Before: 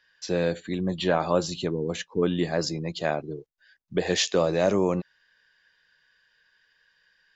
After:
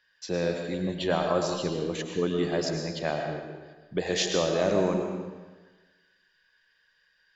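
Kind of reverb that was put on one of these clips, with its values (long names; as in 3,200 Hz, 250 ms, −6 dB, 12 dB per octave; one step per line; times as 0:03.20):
comb and all-pass reverb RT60 1.3 s, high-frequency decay 0.9×, pre-delay 70 ms, DRR 3 dB
level −3.5 dB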